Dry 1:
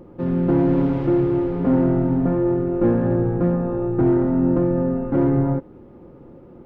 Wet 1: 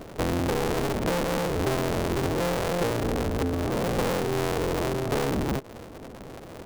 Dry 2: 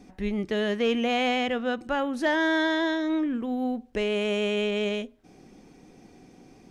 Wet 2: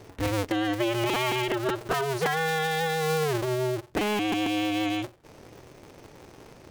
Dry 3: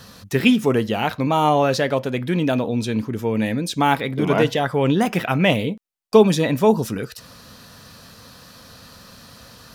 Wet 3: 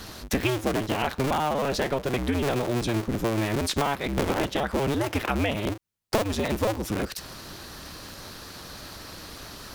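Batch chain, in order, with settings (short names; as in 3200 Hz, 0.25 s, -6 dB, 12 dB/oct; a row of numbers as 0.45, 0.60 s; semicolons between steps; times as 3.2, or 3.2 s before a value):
cycle switcher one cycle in 2, inverted; compressor 12:1, threshold -25 dBFS; match loudness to -27 LUFS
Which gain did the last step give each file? +2.0, +3.0, +3.0 dB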